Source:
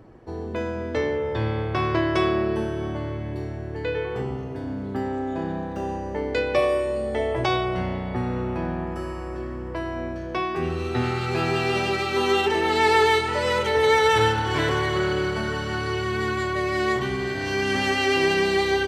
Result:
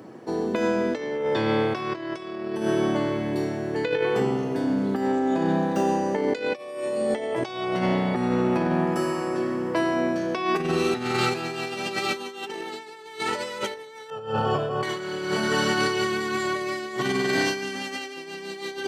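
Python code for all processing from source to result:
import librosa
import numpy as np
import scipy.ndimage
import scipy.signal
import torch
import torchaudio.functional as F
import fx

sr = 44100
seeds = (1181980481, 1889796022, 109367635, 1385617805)

y = fx.chain(x, sr, fx.moving_average(points=22),
    fx.comb(ms=1.6, depth=0.83), at=(14.1, 14.83))
y = scipy.signal.sosfilt(scipy.signal.butter(4, 170.0, 'highpass', fs=sr, output='sos'), y)
y = fx.bass_treble(y, sr, bass_db=3, treble_db=7)
y = fx.over_compress(y, sr, threshold_db=-28.0, ratio=-0.5)
y = F.gain(torch.from_numpy(y), 2.5).numpy()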